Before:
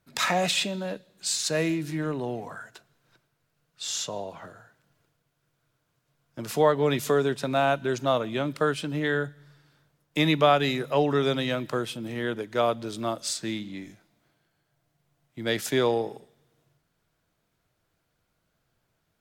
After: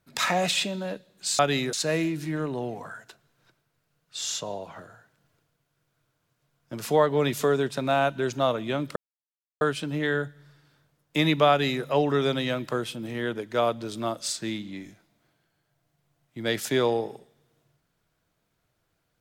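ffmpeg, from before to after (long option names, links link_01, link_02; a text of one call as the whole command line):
ffmpeg -i in.wav -filter_complex "[0:a]asplit=4[link_01][link_02][link_03][link_04];[link_01]atrim=end=1.392[link_05];[link_02]atrim=start=10.508:end=10.852[link_06];[link_03]atrim=start=1.388:end=8.62,asetpts=PTS-STARTPTS,afade=type=out:start_time=7.228:duration=0.004:curve=hsin,apad=pad_dur=0.65[link_07];[link_04]atrim=start=8.62,asetpts=PTS-STARTPTS,afade=type=in:duration=0.004:curve=hsin[link_08];[link_05][link_06]acrossfade=duration=0.004:curve1=hsin:curve2=hsin[link_09];[link_07][link_08]concat=n=2:v=0:a=1[link_10];[link_09][link_10]acrossfade=duration=0.004:curve1=hsin:curve2=hsin" out.wav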